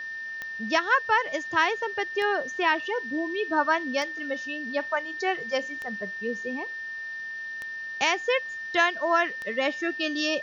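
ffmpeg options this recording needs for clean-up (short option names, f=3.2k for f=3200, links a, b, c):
-af "adeclick=t=4,bandreject=f=1.8k:w=30,afwtdn=0.0032"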